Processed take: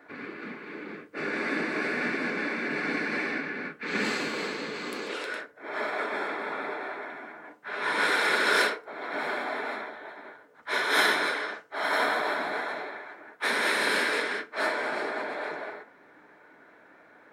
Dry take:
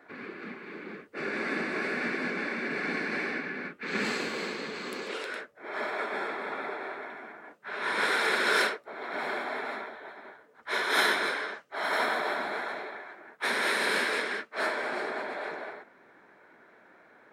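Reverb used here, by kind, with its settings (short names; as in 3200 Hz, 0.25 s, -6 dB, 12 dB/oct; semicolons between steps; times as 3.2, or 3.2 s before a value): FDN reverb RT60 0.36 s, low-frequency decay 1×, high-frequency decay 0.65×, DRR 9 dB; gain +1.5 dB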